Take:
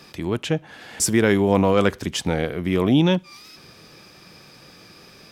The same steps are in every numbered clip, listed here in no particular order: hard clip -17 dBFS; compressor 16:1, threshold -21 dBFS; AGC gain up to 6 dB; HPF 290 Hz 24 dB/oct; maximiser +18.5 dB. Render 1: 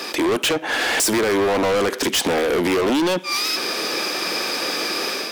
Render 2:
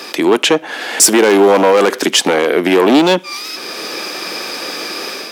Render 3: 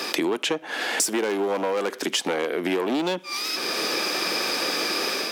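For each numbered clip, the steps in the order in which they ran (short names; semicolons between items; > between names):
AGC > compressor > HPF > maximiser > hard clip; hard clip > compressor > HPF > maximiser > AGC; hard clip > maximiser > HPF > AGC > compressor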